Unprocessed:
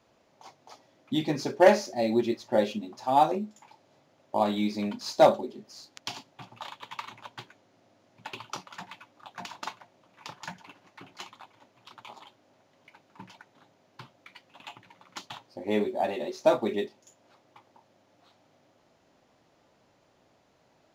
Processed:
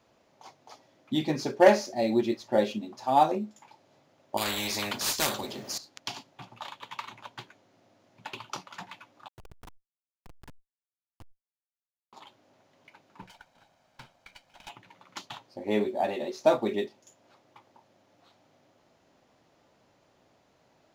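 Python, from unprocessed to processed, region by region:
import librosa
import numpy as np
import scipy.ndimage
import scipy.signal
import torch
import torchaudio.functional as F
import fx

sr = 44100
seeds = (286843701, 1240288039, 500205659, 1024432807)

y = fx.chain(x, sr, fx.high_shelf(hz=11000.0, db=9.5),
    fx.spectral_comp(ratio=4.0), at=(4.37, 5.78))
y = fx.chain(y, sr, fx.high_shelf(hz=8900.0, db=-5.0),
    fx.schmitt(flips_db=-32.0),
    fx.sustainer(db_per_s=46.0), at=(9.28, 12.13))
y = fx.chain(y, sr, fx.lower_of_two(delay_ms=1.3),
    fx.low_shelf(hz=240.0, db=-5.0), at=(13.22, 14.7))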